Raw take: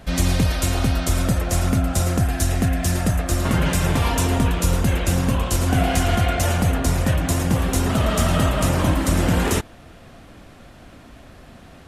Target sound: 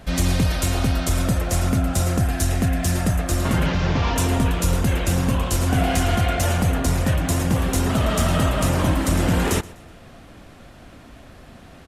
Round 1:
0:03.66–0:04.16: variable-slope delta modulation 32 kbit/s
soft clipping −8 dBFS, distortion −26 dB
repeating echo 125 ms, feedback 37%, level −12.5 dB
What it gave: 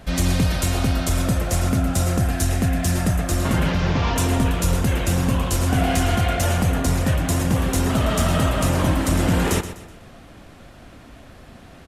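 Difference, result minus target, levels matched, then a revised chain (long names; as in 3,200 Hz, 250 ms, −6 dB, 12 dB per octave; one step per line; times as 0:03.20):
echo-to-direct +9 dB
0:03.66–0:04.16: variable-slope delta modulation 32 kbit/s
soft clipping −8 dBFS, distortion −26 dB
repeating echo 125 ms, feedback 37%, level −21.5 dB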